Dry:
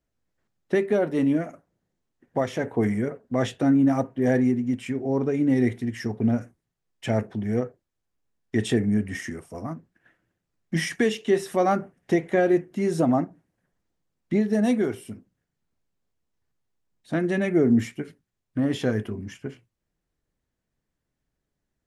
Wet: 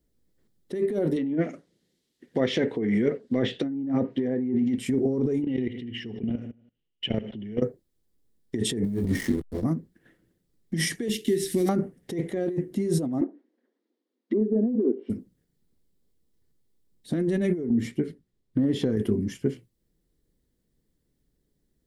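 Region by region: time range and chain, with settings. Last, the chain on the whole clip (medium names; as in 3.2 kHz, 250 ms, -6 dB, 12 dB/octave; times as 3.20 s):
1.16–4.78 s: frequency weighting D + low-pass that closes with the level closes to 1.1 kHz, closed at -18 dBFS
5.42–7.62 s: feedback delay 78 ms, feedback 44%, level -17 dB + level held to a coarse grid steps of 22 dB + resonant low-pass 2.9 kHz, resonance Q 12
8.84–9.64 s: block-companded coder 7-bit + doubling 21 ms -2 dB + hysteresis with a dead band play -30 dBFS
11.08–11.69 s: CVSD coder 64 kbps + high-order bell 810 Hz -16 dB + compression 16:1, threshold -27 dBFS
13.21–15.10 s: low-pass that closes with the level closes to 420 Hz, closed at -23 dBFS + brick-wall FIR high-pass 220 Hz + distance through air 210 m
17.69–18.97 s: low-pass 3.2 kHz 6 dB/octave + compression 10:1, threshold -27 dBFS
whole clip: high-order bell 1 kHz -11.5 dB; compressor with a negative ratio -29 dBFS, ratio -1; fifteen-band graphic EQ 100 Hz -6 dB, 2.5 kHz -12 dB, 6.3 kHz -6 dB; trim +5 dB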